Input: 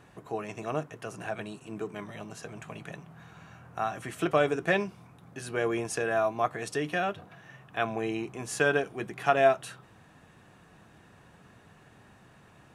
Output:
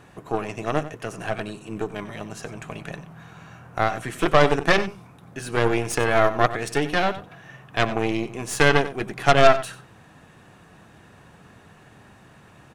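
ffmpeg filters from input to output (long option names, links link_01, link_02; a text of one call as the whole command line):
ffmpeg -i in.wav -filter_complex "[0:a]aeval=exprs='0.335*(cos(1*acos(clip(val(0)/0.335,-1,1)))-cos(1*PI/2))+0.075*(cos(6*acos(clip(val(0)/0.335,-1,1)))-cos(6*PI/2))':channel_layout=same,asplit=2[link_01][link_02];[link_02]adelay=93.29,volume=-14dB,highshelf=frequency=4000:gain=-2.1[link_03];[link_01][link_03]amix=inputs=2:normalize=0,volume=6dB" out.wav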